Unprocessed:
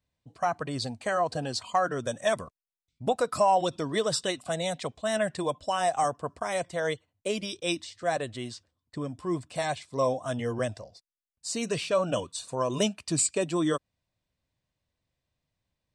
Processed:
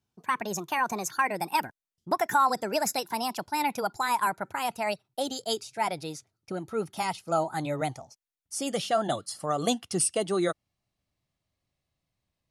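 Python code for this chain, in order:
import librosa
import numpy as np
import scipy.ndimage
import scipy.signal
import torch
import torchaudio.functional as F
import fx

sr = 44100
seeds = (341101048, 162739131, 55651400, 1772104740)

y = fx.speed_glide(x, sr, from_pct=149, to_pct=106)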